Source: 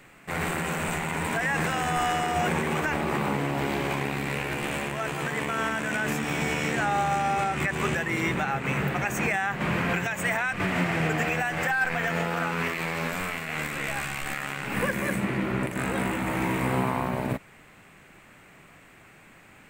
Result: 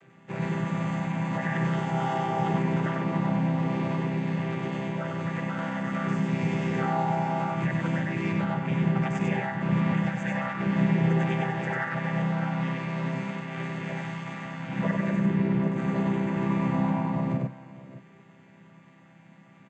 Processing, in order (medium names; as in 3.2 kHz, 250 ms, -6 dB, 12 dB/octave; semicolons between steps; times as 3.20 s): vocoder on a held chord major triad, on C3; multi-tap echo 96/616 ms -3/-16.5 dB